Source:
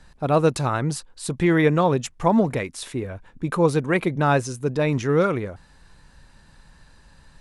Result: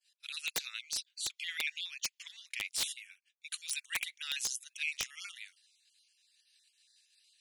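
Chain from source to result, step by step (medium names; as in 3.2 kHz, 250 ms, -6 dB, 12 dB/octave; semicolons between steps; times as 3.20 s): random holes in the spectrogram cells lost 22%; steep high-pass 2.5 kHz 36 dB/octave; expander -57 dBFS; 0.57–2.68 s: peaking EQ 9.5 kHz -10 dB 0.63 oct; integer overflow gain 26.5 dB; loudspeaker Doppler distortion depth 0.75 ms; trim +3.5 dB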